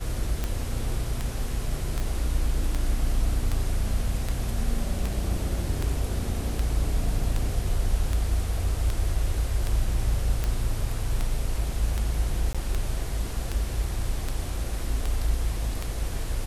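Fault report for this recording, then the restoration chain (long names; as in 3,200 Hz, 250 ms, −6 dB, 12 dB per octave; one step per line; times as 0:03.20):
scratch tick 78 rpm −14 dBFS
0:02.00: click
0:12.53–0:12.55: drop-out 16 ms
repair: click removal
repair the gap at 0:12.53, 16 ms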